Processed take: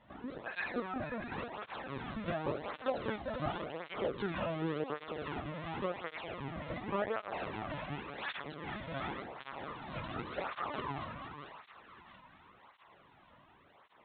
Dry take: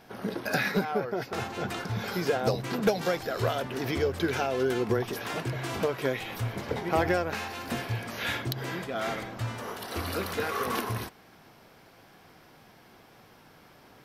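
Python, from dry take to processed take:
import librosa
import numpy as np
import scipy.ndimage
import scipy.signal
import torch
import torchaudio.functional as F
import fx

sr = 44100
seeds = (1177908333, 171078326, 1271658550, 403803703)

p1 = fx.peak_eq(x, sr, hz=1000.0, db=8.0, octaves=0.22)
p2 = p1 + fx.echo_split(p1, sr, split_hz=1000.0, low_ms=197, high_ms=679, feedback_pct=52, wet_db=-11, dry=0)
p3 = fx.pitch_keep_formants(p2, sr, semitones=3.5)
p4 = p3 + 10.0 ** (-10.0 / 20.0) * np.pad(p3, (int(473 * sr / 1000.0), 0))[:len(p3)]
p5 = fx.lpc_vocoder(p4, sr, seeds[0], excitation='pitch_kept', order=10)
p6 = fx.flanger_cancel(p5, sr, hz=0.9, depth_ms=2.7)
y = F.gain(torch.from_numpy(p6), -5.5).numpy()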